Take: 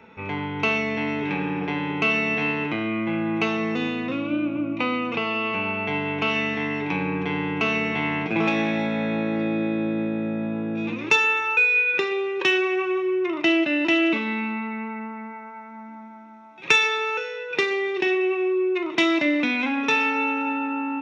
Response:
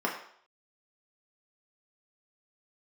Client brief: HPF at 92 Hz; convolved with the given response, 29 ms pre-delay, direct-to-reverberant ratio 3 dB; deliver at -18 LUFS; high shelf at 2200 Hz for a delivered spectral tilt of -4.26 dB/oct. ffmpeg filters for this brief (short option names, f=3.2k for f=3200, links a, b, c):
-filter_complex "[0:a]highpass=92,highshelf=f=2.2k:g=-7.5,asplit=2[a][b];[1:a]atrim=start_sample=2205,adelay=29[c];[b][c]afir=irnorm=-1:irlink=0,volume=-13dB[d];[a][d]amix=inputs=2:normalize=0,volume=5.5dB"